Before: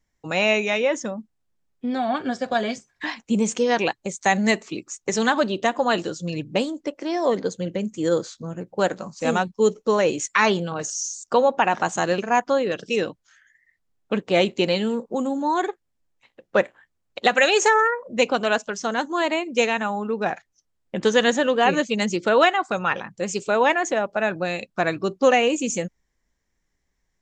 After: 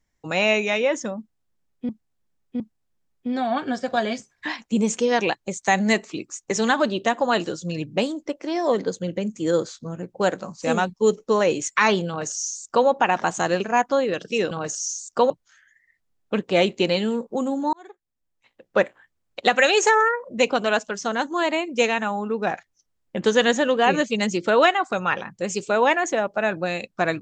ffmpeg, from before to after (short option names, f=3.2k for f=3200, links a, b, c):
-filter_complex "[0:a]asplit=6[a][b][c][d][e][f];[a]atrim=end=1.892[g];[b]atrim=start=1.178:end=1.892[h];[c]atrim=start=1.178:end=13.092[i];[d]atrim=start=10.658:end=11.452[j];[e]atrim=start=13.088:end=15.52,asetpts=PTS-STARTPTS,afade=t=out:st=2.428:d=0.004:c=hsin[k];[f]atrim=start=15.52,asetpts=PTS-STARTPTS,afade=t=in:d=1.05[l];[g][h]acrossfade=d=0.004:c1=hsin:c2=hsin[m];[m][i]acrossfade=d=0.004:c1=hsin:c2=hsin[n];[n][j]acrossfade=d=0.004:c1=hsin:c2=hsin[o];[k][l]concat=n=2:v=0:a=1[p];[o][p]acrossfade=d=0.004:c1=hsin:c2=hsin"